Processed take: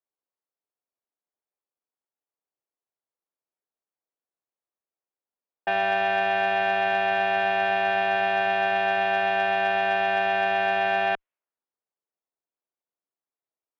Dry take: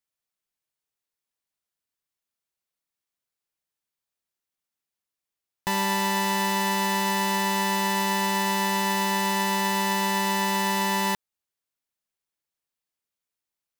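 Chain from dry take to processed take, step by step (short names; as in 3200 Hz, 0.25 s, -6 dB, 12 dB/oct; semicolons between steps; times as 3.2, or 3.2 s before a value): low-pass opened by the level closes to 980 Hz, open at -24.5 dBFS; mistuned SSB -200 Hz 540–3200 Hz; added harmonics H 2 -27 dB, 3 -25 dB, 6 -42 dB, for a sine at -15 dBFS; gain +4.5 dB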